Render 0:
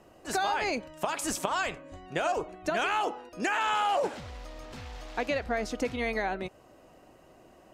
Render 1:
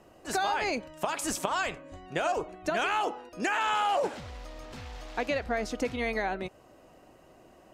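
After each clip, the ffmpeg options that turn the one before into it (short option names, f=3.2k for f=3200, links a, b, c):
-af anull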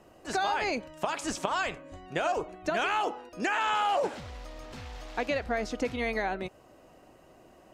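-filter_complex "[0:a]acrossover=split=7500[a][b];[b]acompressor=threshold=-58dB:ratio=4:attack=1:release=60[c];[a][c]amix=inputs=2:normalize=0"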